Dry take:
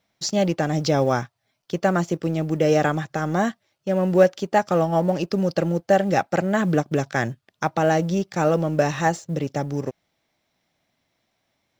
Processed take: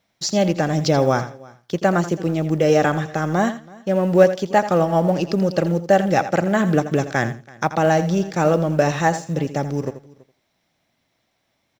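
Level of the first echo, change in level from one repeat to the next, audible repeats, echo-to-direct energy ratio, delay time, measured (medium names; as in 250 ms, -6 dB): -12.5 dB, no regular repeats, 3, -12.0 dB, 83 ms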